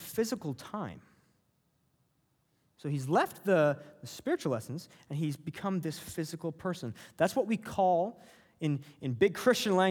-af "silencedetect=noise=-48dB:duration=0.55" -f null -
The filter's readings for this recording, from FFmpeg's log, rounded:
silence_start: 0.98
silence_end: 2.80 | silence_duration: 1.82